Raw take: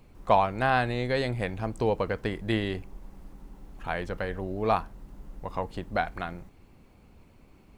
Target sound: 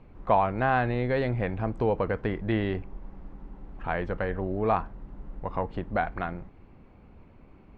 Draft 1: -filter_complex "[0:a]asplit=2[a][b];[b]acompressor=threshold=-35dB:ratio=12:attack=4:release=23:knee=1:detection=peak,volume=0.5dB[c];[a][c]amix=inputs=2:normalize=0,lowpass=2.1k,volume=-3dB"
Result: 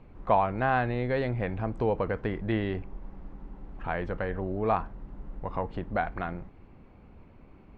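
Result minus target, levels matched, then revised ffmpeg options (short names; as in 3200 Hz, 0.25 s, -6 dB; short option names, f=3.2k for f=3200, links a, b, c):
compressor: peak gain reduction +5.5 dB
-filter_complex "[0:a]asplit=2[a][b];[b]acompressor=threshold=-29dB:ratio=12:attack=4:release=23:knee=1:detection=peak,volume=0.5dB[c];[a][c]amix=inputs=2:normalize=0,lowpass=2.1k,volume=-3dB"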